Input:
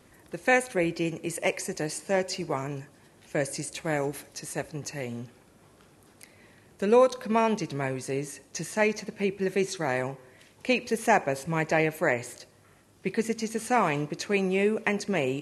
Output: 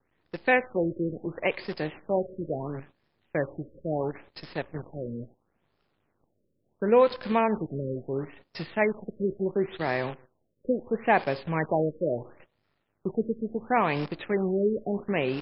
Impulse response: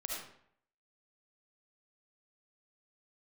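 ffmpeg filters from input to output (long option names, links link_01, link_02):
-af "acrusher=bits=7:dc=4:mix=0:aa=0.000001,agate=range=-13dB:threshold=-48dB:ratio=16:detection=peak,afftfilt=real='re*lt(b*sr/1024,580*pow(5500/580,0.5+0.5*sin(2*PI*0.73*pts/sr)))':imag='im*lt(b*sr/1024,580*pow(5500/580,0.5+0.5*sin(2*PI*0.73*pts/sr)))':win_size=1024:overlap=0.75"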